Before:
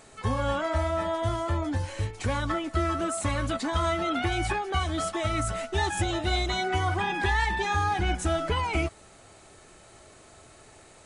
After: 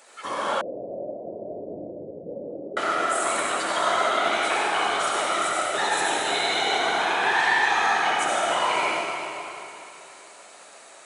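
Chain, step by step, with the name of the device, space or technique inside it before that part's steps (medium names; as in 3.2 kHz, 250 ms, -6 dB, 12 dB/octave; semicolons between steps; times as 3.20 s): whispering ghost (whisper effect; high-pass 590 Hz 12 dB/octave; reverberation RT60 2.9 s, pre-delay 61 ms, DRR -4.5 dB); 0.61–2.77 s: steep low-pass 560 Hz 48 dB/octave; trim +1.5 dB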